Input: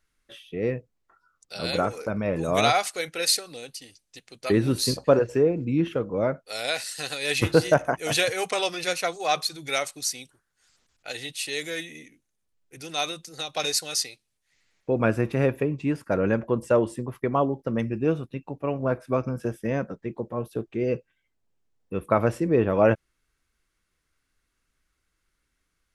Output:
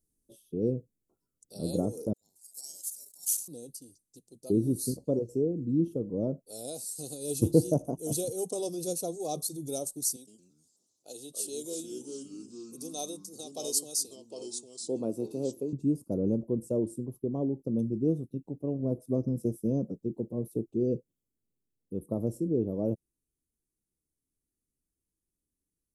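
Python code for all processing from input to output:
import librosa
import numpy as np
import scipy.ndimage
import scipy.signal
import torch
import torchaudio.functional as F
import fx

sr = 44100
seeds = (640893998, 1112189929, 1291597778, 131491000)

y = fx.chain(x, sr, fx.cheby2_highpass(hz=740.0, order=4, stop_db=80),
    fx.ring_mod(carrier_hz=1700.0),
    fx.sustainer(db_per_s=140.0), at=(2.13, 3.48))
y = fx.chain(y, sr, fx.weighting(curve='A'),
    fx.echo_pitch(ms=112, semitones=-3, count=3, db_per_echo=-6.0), at=(10.16, 15.73))
y = scipy.signal.sosfilt(scipy.signal.cheby1(2, 1.0, [310.0, 9500.0], 'bandstop', fs=sr, output='sos'), y)
y = fx.low_shelf(y, sr, hz=84.0, db=-11.0)
y = fx.rider(y, sr, range_db=10, speed_s=2.0)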